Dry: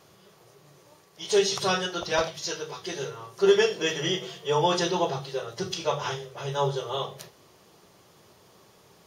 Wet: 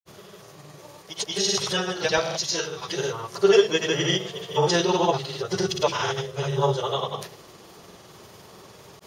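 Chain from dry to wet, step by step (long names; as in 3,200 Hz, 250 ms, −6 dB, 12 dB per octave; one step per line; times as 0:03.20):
in parallel at +2 dB: downward compressor, threshold −39 dBFS, peak gain reduction 22.5 dB
on the sum: granular cloud, pitch spread up and down by 0 semitones
level +3.5 dB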